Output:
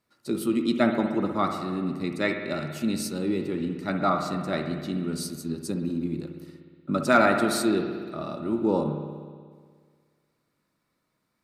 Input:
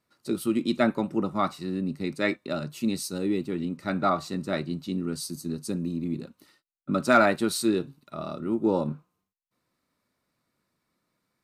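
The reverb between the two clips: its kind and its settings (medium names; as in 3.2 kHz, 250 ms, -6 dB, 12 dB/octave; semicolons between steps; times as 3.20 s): spring tank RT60 1.8 s, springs 60 ms, chirp 75 ms, DRR 5 dB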